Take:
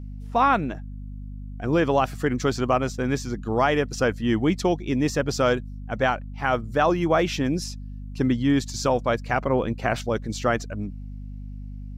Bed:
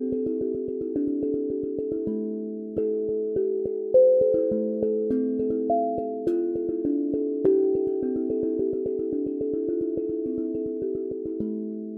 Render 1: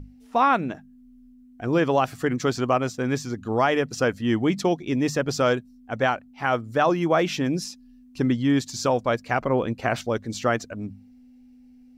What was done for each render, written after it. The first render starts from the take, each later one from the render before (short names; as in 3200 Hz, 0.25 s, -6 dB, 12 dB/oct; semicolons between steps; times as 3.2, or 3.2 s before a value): notches 50/100/150/200 Hz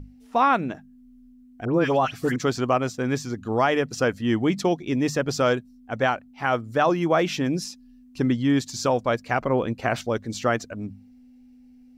1.65–2.36 dispersion highs, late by 97 ms, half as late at 2100 Hz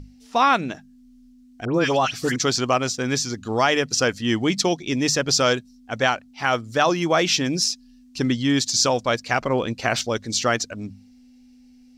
bell 5300 Hz +14 dB 2 oct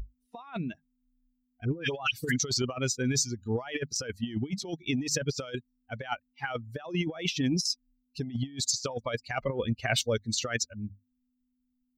per-bin expansion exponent 2; negative-ratio compressor -30 dBFS, ratio -0.5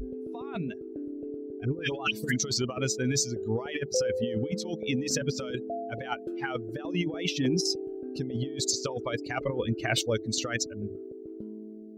add bed -11.5 dB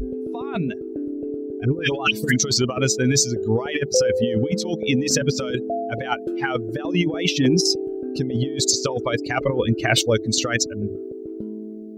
gain +9 dB